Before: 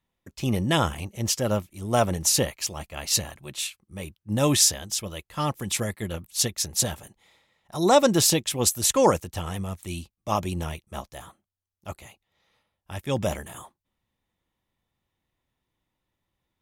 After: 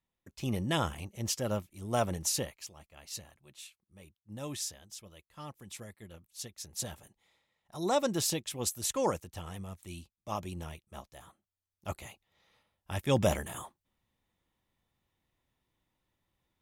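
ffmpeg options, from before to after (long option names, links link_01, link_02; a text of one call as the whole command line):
ffmpeg -i in.wav -af "volume=10dB,afade=type=out:start_time=2.16:duration=0.57:silence=0.298538,afade=type=in:start_time=6.55:duration=0.42:silence=0.421697,afade=type=in:start_time=11.21:duration=0.78:silence=0.298538" out.wav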